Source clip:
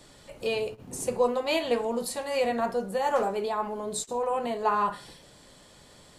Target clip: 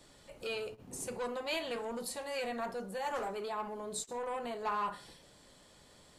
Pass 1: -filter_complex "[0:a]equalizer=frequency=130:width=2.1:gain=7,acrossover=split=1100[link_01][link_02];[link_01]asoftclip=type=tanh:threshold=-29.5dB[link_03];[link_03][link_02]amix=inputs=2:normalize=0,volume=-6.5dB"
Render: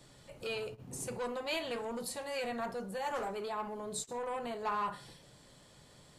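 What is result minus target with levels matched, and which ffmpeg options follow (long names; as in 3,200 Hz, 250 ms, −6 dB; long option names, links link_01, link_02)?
125 Hz band +4.5 dB
-filter_complex "[0:a]equalizer=frequency=130:width=2.1:gain=-2,acrossover=split=1100[link_01][link_02];[link_01]asoftclip=type=tanh:threshold=-29.5dB[link_03];[link_03][link_02]amix=inputs=2:normalize=0,volume=-6.5dB"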